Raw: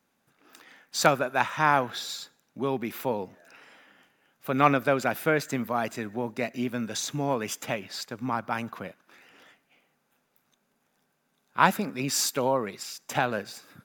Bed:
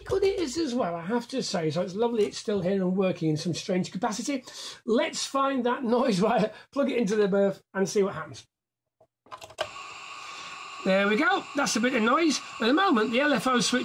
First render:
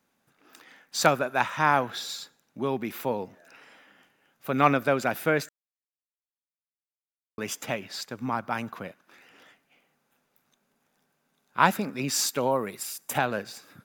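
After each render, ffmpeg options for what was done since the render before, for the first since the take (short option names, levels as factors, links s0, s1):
-filter_complex "[0:a]asettb=1/sr,asplit=3[s0][s1][s2];[s0]atrim=end=12.514[s3];[s1]atrim=start=12.51:end=13.18,asetpts=PTS-STARTPTS,afade=t=in:d=0.004:c=qsin,afade=t=out:st=0.666:d=0.004:c=qsin,highshelf=f=7600:t=q:w=1.5:g=9[s4];[s2]atrim=start=13.176[s5];[s3][s4]acrossfade=d=0.004:c1=hsin:c2=qsin[s6];[s6][s5]acrossfade=d=0.004:c1=qsin:c2=hsin,asplit=3[s7][s8][s9];[s7]atrim=end=5.49,asetpts=PTS-STARTPTS,afade=t=out:st=5.486:d=0.004:c=hsin[s10];[s8]atrim=start=5.49:end=7.38,asetpts=PTS-STARTPTS,volume=0[s11];[s9]atrim=start=7.38,asetpts=PTS-STARTPTS,afade=t=in:d=0.004:c=hsin[s12];[s10][s11][s12]concat=n=3:v=0:a=1"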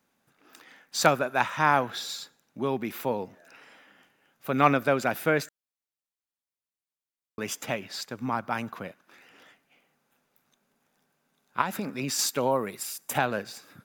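-filter_complex "[0:a]asettb=1/sr,asplit=3[s0][s1][s2];[s0]atrim=end=11.614[s3];[s1]atrim=start=11.61:end=12.19,asetpts=PTS-STARTPTS,afade=t=in:d=0.004:c=qsin,afade=t=out:st=0.576:d=0.004:c=qsin,acompressor=threshold=0.0501:ratio=4:attack=3.2:release=140:knee=1:detection=peak[s4];[s2]atrim=start=12.186[s5];[s3][s4]acrossfade=d=0.004:c1=hsin:c2=qsin[s6];[s6][s5]acrossfade=d=0.004:c1=qsin:c2=hsin"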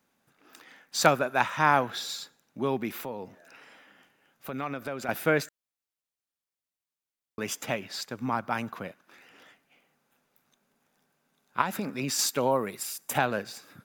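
-filter_complex "[0:a]asettb=1/sr,asplit=3[s0][s1][s2];[s0]atrim=end=2.994[s3];[s1]atrim=start=2.99:end=5.09,asetpts=PTS-STARTPTS,afade=t=in:d=0.004:c=qsin,afade=t=out:st=2.096:d=0.004:c=qsin,acompressor=threshold=0.0178:ratio=2.5:attack=3.2:release=140:knee=1:detection=peak[s4];[s2]atrim=start=5.086[s5];[s3][s4]acrossfade=d=0.004:c1=hsin:c2=qsin[s6];[s6][s5]acrossfade=d=0.004:c1=qsin:c2=hsin"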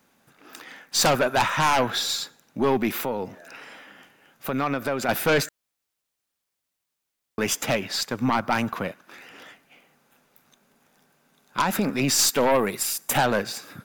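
-af "asoftclip=type=tanh:threshold=0.237,aeval=exprs='0.237*(cos(1*acos(clip(val(0)/0.237,-1,1)))-cos(1*PI/2))+0.0944*(cos(5*acos(clip(val(0)/0.237,-1,1)))-cos(5*PI/2))+0.015*(cos(8*acos(clip(val(0)/0.237,-1,1)))-cos(8*PI/2))':c=same"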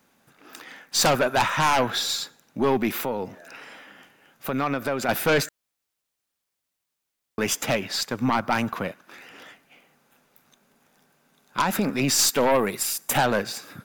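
-af anull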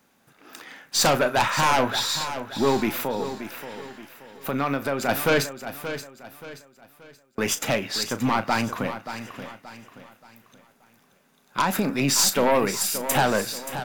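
-filter_complex "[0:a]asplit=2[s0][s1];[s1]adelay=36,volume=0.237[s2];[s0][s2]amix=inputs=2:normalize=0,asplit=2[s3][s4];[s4]aecho=0:1:578|1156|1734|2312:0.282|0.104|0.0386|0.0143[s5];[s3][s5]amix=inputs=2:normalize=0"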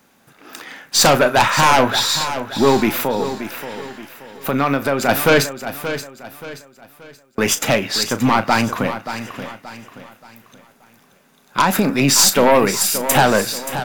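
-af "volume=2.37,alimiter=limit=0.708:level=0:latency=1"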